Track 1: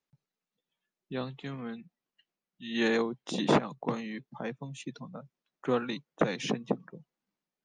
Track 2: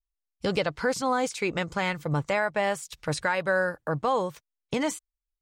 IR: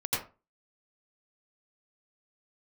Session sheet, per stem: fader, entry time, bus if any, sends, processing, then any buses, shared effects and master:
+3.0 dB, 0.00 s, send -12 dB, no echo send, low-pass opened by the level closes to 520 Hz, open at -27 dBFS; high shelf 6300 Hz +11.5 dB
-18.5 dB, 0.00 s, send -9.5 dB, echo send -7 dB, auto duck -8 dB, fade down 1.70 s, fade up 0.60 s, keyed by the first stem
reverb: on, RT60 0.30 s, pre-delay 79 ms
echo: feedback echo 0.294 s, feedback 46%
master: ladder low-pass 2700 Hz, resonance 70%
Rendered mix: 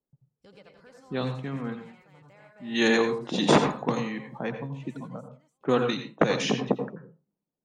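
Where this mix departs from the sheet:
stem 2 -18.5 dB -> -27.5 dB; master: missing ladder low-pass 2700 Hz, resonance 70%

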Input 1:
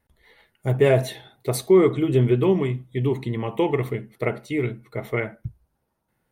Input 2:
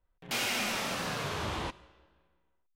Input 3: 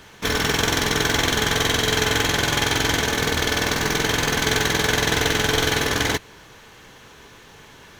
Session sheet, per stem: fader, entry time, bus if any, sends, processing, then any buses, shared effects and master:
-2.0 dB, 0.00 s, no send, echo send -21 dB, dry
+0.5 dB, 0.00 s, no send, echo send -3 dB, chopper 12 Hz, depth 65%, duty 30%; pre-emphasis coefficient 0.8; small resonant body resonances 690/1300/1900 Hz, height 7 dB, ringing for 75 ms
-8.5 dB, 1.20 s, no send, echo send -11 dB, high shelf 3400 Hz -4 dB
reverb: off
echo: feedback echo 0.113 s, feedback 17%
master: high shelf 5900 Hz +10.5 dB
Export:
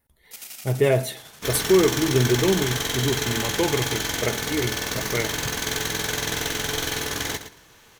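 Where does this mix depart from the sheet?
stem 2 +0.5 dB -> -6.0 dB; stem 3: missing high shelf 3400 Hz -4 dB

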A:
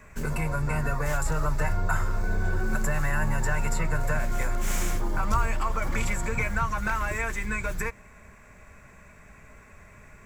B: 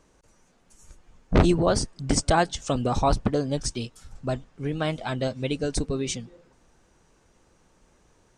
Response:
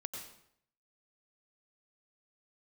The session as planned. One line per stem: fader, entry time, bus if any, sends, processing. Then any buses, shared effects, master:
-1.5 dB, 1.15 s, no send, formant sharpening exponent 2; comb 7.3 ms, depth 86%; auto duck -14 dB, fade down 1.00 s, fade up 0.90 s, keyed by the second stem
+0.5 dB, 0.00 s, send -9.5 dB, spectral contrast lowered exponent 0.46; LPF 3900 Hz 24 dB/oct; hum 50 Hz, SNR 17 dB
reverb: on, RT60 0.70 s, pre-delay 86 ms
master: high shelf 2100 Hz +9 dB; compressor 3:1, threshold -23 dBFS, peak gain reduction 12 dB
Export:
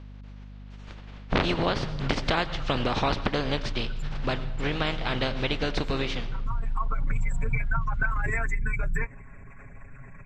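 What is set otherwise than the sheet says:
stem A -1.5 dB -> +5.0 dB; master: missing high shelf 2100 Hz +9 dB

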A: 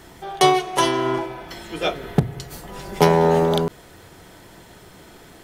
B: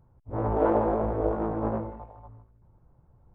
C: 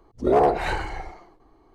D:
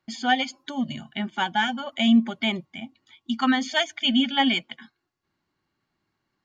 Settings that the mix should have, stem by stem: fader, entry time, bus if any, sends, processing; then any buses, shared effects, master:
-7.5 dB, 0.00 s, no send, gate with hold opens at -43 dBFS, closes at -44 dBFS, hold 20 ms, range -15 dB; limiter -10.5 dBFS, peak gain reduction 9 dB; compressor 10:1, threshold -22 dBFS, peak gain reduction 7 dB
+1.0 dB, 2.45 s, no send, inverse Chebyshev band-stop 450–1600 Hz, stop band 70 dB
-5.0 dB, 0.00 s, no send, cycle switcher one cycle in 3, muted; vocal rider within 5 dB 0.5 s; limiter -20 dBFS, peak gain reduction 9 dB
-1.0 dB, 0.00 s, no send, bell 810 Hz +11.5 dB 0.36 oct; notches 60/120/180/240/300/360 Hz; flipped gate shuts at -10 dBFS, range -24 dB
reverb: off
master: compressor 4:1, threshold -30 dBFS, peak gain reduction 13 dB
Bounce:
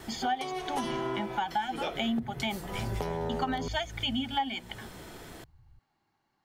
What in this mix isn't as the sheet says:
stem A -7.5 dB -> -1.0 dB; stem C -5.0 dB -> -15.0 dB; stem D: missing flipped gate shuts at -10 dBFS, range -24 dB

